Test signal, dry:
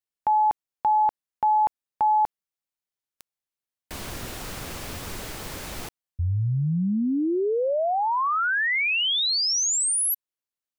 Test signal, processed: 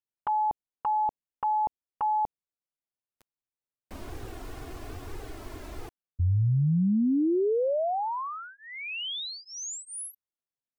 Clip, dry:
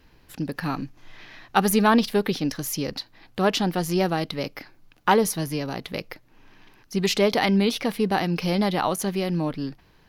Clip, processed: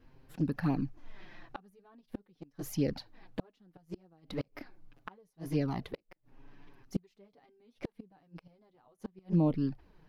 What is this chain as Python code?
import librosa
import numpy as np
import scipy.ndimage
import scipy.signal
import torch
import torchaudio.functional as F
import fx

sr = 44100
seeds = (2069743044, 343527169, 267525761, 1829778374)

y = fx.gate_flip(x, sr, shuts_db=-16.0, range_db=-36)
y = fx.env_flanger(y, sr, rest_ms=8.6, full_db=-22.0)
y = fx.tilt_shelf(y, sr, db=6.5, hz=1500.0)
y = F.gain(torch.from_numpy(y), -6.0).numpy()